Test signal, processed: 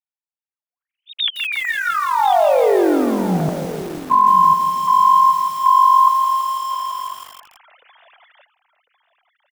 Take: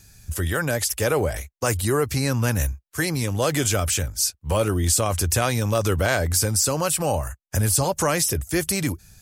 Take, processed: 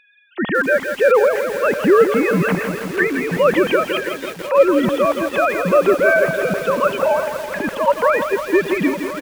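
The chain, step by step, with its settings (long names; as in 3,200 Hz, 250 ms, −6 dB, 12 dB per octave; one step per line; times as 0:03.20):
three sine waves on the formant tracks
on a send: single-tap delay 1,050 ms −14.5 dB
on the sum: feedback echo at a low word length 165 ms, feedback 80%, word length 6 bits, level −8 dB
level +5 dB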